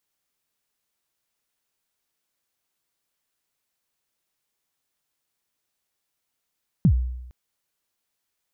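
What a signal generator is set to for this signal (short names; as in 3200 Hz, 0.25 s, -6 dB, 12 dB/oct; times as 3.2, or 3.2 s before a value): kick drum length 0.46 s, from 210 Hz, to 62 Hz, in 78 ms, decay 0.91 s, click off, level -11 dB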